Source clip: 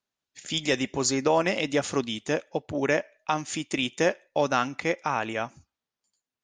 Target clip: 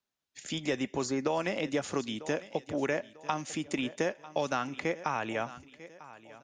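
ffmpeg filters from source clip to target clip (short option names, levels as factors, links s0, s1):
-filter_complex "[0:a]aecho=1:1:945|1890|2835:0.0891|0.0312|0.0109,acrossover=split=150|1900[s0][s1][s2];[s0]acompressor=threshold=0.00447:ratio=4[s3];[s1]acompressor=threshold=0.0501:ratio=4[s4];[s2]acompressor=threshold=0.0112:ratio=4[s5];[s3][s4][s5]amix=inputs=3:normalize=0,volume=0.841"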